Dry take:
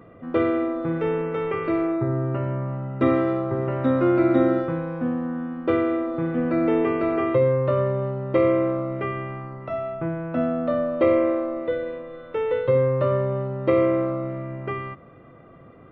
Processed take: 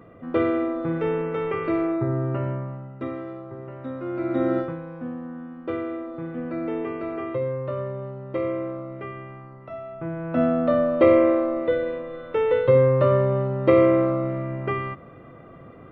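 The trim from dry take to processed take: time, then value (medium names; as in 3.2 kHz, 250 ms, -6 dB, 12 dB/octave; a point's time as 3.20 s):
2.48 s -0.5 dB
3.10 s -12.5 dB
4.03 s -12.5 dB
4.59 s -0.5 dB
4.77 s -7.5 dB
9.87 s -7.5 dB
10.43 s +3 dB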